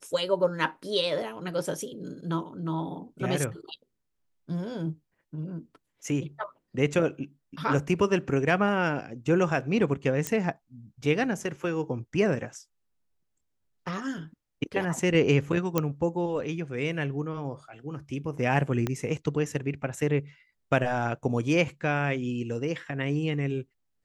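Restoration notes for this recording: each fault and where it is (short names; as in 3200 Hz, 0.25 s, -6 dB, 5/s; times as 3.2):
10.27 pop -12 dBFS
15.78 pop -10 dBFS
18.87 pop -15 dBFS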